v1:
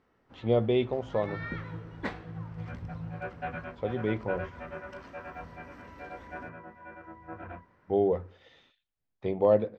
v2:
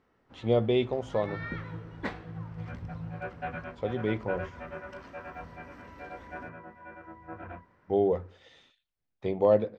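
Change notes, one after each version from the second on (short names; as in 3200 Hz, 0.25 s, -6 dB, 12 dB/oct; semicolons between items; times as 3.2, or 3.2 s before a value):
speech: remove air absorption 110 m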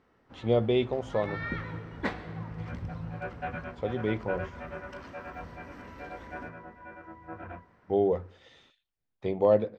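reverb: on, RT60 2.3 s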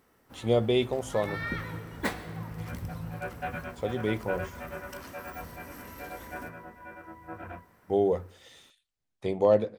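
master: remove air absorption 180 m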